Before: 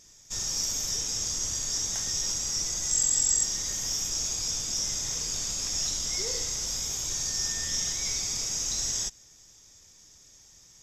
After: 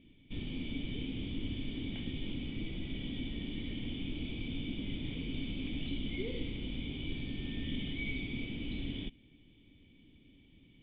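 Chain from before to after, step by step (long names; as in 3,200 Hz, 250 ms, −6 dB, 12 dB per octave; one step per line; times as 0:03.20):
formant resonators in series i
level +15.5 dB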